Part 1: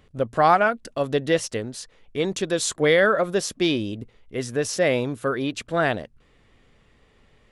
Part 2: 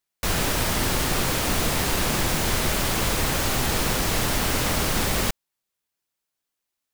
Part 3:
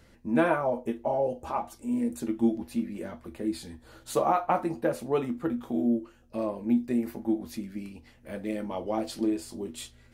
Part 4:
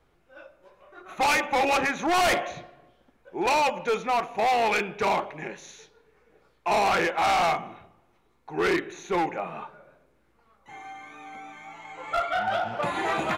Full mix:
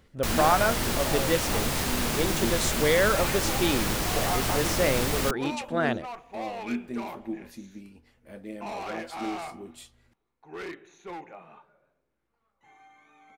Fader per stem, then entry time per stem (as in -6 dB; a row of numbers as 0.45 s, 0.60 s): -5.0 dB, -4.5 dB, -7.0 dB, -14.0 dB; 0.00 s, 0.00 s, 0.00 s, 1.95 s